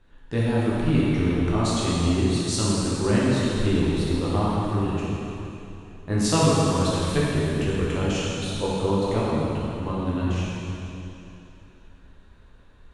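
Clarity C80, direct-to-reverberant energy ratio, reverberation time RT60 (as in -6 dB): -2.0 dB, -7.5 dB, 3.0 s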